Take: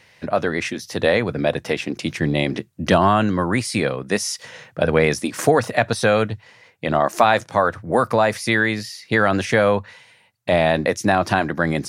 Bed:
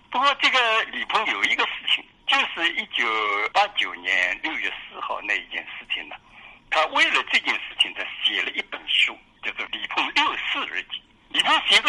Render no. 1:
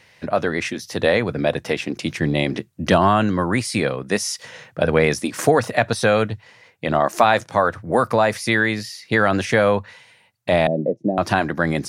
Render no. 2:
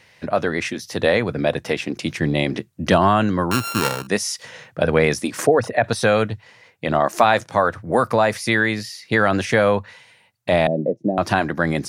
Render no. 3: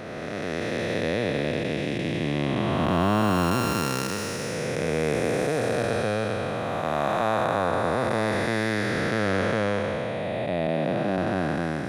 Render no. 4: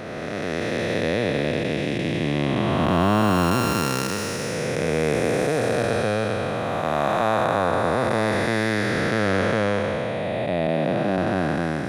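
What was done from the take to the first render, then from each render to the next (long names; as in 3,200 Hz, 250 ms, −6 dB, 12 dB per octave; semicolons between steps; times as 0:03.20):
0:10.67–0:11.18: elliptic band-pass filter 140–600 Hz
0:03.51–0:04.07: samples sorted by size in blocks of 32 samples; 0:05.43–0:05.84: spectral envelope exaggerated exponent 1.5
spectrum smeared in time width 838 ms
level +3 dB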